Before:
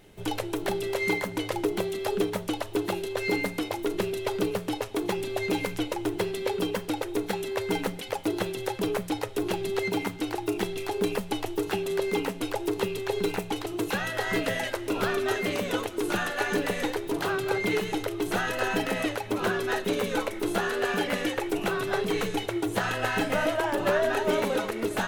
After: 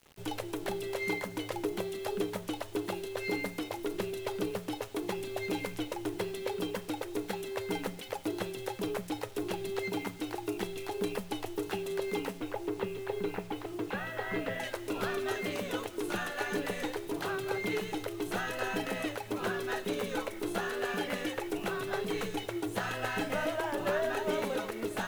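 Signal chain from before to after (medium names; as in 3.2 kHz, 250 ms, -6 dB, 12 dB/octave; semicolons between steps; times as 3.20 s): 12.40–14.60 s: low-pass 2.6 kHz 12 dB/octave; bit crusher 8-bit; trim -6.5 dB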